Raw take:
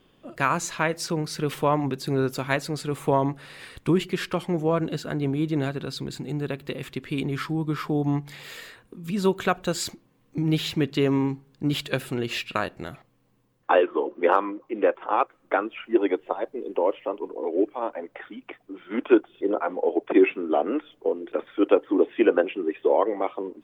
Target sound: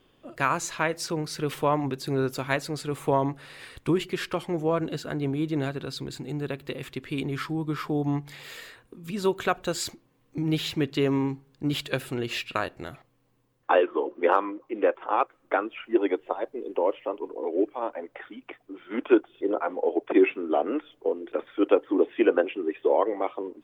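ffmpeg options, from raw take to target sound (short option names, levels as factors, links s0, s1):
-af "equalizer=f=190:t=o:w=0.41:g=-6.5,volume=0.841"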